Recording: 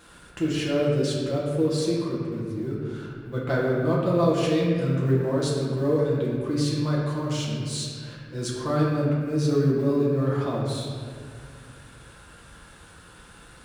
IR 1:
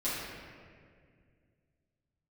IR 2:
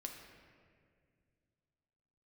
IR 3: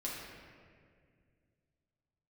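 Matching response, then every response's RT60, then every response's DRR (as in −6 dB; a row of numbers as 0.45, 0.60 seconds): 3; 2.1, 2.1, 2.1 seconds; −12.0, 2.0, −5.5 decibels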